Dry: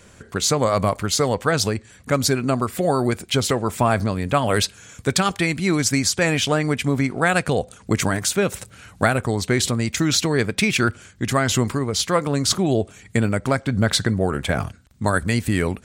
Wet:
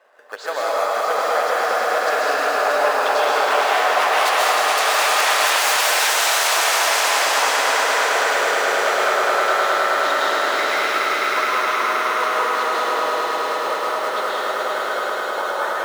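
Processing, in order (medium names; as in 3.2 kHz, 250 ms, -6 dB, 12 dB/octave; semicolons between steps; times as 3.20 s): Doppler pass-by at 5.19 s, 28 m/s, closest 23 m; level-controlled noise filter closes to 1.4 kHz, open at -18.5 dBFS; in parallel at -7.5 dB: decimation with a swept rate 13×, swing 60% 0.24 Hz; on the sum: band-stop 2.3 kHz, Q 18; on a send: echo with a slow build-up 105 ms, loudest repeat 5, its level -7 dB; on the sum: sine folder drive 18 dB, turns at -2 dBFS; high-pass 610 Hz 24 dB/octave; compression 4:1, threshold -16 dBFS, peak gain reduction 11 dB; treble shelf 4 kHz -5 dB; plate-style reverb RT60 2.7 s, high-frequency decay 0.85×, pre-delay 110 ms, DRR -6 dB; trim -5.5 dB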